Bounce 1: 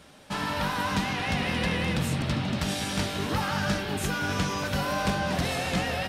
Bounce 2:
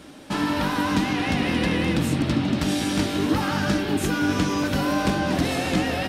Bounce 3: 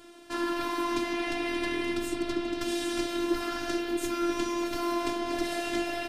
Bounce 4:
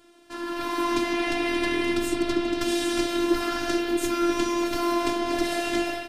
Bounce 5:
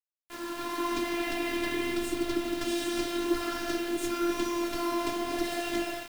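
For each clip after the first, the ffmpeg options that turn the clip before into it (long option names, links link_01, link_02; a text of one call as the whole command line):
ffmpeg -i in.wav -filter_complex "[0:a]equalizer=frequency=300:width=2.5:gain=13,asplit=2[link_01][link_02];[link_02]acompressor=threshold=-31dB:ratio=6,volume=-2.5dB[link_03];[link_01][link_03]amix=inputs=2:normalize=0" out.wav
ffmpeg -i in.wav -af "lowshelf=frequency=170:gain=-3.5,afftfilt=real='hypot(re,im)*cos(PI*b)':imag='0':win_size=512:overlap=0.75,volume=-3dB" out.wav
ffmpeg -i in.wav -af "dynaudnorm=framelen=420:gausssize=3:maxgain=12dB,volume=-5dB" out.wav
ffmpeg -i in.wav -af "flanger=delay=1.8:depth=8.4:regen=-65:speed=0.88:shape=triangular,acrusher=bits=6:mix=0:aa=0.000001,volume=-1.5dB" out.wav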